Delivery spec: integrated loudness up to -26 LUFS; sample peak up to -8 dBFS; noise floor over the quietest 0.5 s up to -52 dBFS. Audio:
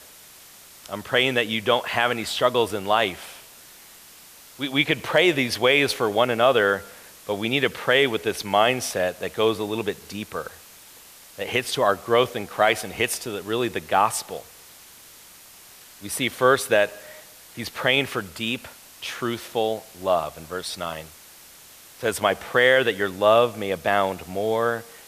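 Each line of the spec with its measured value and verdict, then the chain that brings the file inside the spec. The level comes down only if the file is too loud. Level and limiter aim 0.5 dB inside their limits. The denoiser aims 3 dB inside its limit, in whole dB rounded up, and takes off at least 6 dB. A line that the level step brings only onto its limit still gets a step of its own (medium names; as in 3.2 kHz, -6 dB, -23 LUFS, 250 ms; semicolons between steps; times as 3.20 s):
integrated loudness -22.5 LUFS: fail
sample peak -5.5 dBFS: fail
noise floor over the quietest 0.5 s -48 dBFS: fail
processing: noise reduction 6 dB, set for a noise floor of -48 dBFS; trim -4 dB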